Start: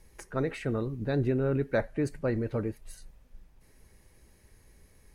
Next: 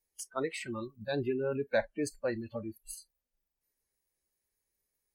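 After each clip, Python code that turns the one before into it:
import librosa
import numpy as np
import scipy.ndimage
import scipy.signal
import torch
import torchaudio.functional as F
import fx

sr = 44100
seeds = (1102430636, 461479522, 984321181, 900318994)

y = fx.noise_reduce_blind(x, sr, reduce_db=26)
y = fx.bass_treble(y, sr, bass_db=-11, treble_db=9)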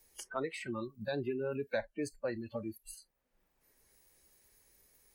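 y = fx.band_squash(x, sr, depth_pct=70)
y = F.gain(torch.from_numpy(y), -3.5).numpy()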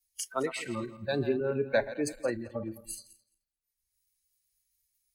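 y = fx.reverse_delay_fb(x, sr, ms=108, feedback_pct=55, wet_db=-10.5)
y = fx.band_widen(y, sr, depth_pct=100)
y = F.gain(torch.from_numpy(y), 4.5).numpy()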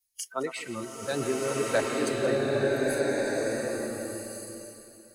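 y = fx.low_shelf(x, sr, hz=100.0, db=-8.0)
y = fx.rev_bloom(y, sr, seeds[0], attack_ms=1470, drr_db=-4.5)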